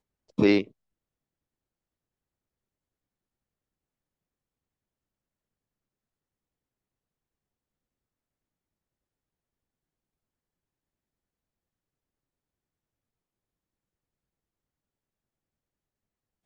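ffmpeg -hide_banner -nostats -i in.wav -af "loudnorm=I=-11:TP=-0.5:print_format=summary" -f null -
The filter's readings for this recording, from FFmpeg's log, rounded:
Input Integrated:    -23.8 LUFS
Input True Peak:      -8.5 dBTP
Input LRA:             0.0 LU
Input Threshold:     -35.2 LUFS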